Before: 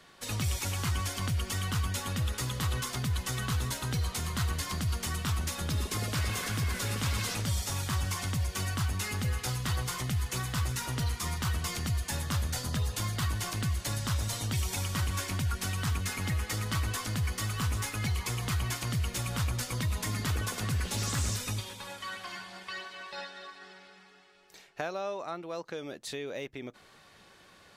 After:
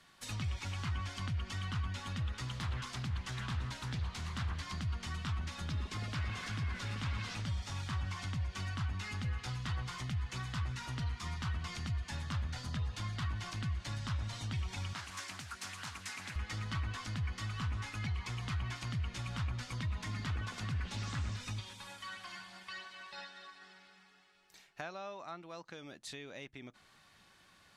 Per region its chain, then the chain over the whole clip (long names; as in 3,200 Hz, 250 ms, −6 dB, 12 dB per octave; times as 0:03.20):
0:02.48–0:04.63: high-shelf EQ 10,000 Hz +6 dB + mains-hum notches 50/100/150 Hz + highs frequency-modulated by the lows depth 0.43 ms
0:14.93–0:16.36: high-pass filter 570 Hz 6 dB per octave + parametric band 3,200 Hz −3.5 dB 0.22 octaves + highs frequency-modulated by the lows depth 0.41 ms
whole clip: treble cut that deepens with the level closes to 2,800 Hz, closed at −26.5 dBFS; parametric band 460 Hz −8.5 dB 1 octave; level −5.5 dB